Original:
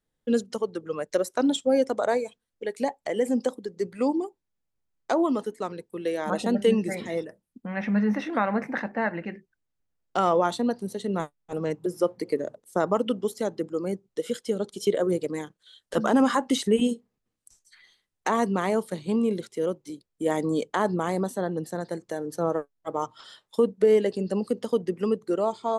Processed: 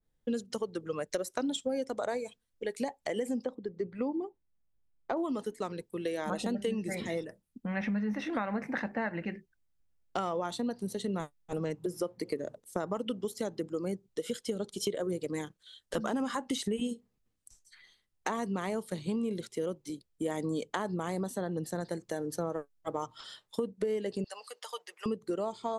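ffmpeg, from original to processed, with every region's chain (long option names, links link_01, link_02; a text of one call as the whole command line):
ffmpeg -i in.wav -filter_complex "[0:a]asettb=1/sr,asplit=3[link_01][link_02][link_03];[link_01]atrim=end=3.444[link_04];[link_02]atrim=start=3.44:end=5.17,asetpts=PTS-STARTPTS,afade=type=in:duration=0.004:curve=qsin,afade=type=out:start_time=1.726:duration=0.004:curve=qsin,lowpass=3400,highshelf=frequency=2200:gain=-9[link_05];[link_03]atrim=start=5.166[link_06];[link_04][link_05]acrossfade=duration=0.004:curve1=hsin:curve2=qsin[link_07];[link_07][link_06]acrossfade=duration=0.004:curve1=qsin:curve2=hsin,asettb=1/sr,asplit=3[link_08][link_09][link_10];[link_08]atrim=end=24.244[link_11];[link_09]atrim=start=24.24:end=25.06,asetpts=PTS-STARTPTS,afade=type=in:duration=0.004:curve=qsin,afade=type=out:start_time=0.816:duration=0.004:curve=qsin,highpass=frequency=830:width=0.5412,highpass=frequency=830:width=1.3066,aecho=1:1:6.6:0.38,atrim=end_sample=36162[link_12];[link_10]atrim=start=25.056[link_13];[link_11][link_12]acrossfade=duration=0.004:curve1=hsin:curve2=qsin[link_14];[link_14][link_13]acrossfade=duration=0.004:curve1=qsin:curve2=hsin,lowshelf=frequency=120:gain=10,acompressor=threshold=-27dB:ratio=5,adynamicequalizer=threshold=0.00398:dfrequency=1900:dqfactor=0.7:tfrequency=1900:tqfactor=0.7:attack=5:release=100:ratio=0.375:range=2:mode=boostabove:tftype=highshelf,volume=-3dB" out.wav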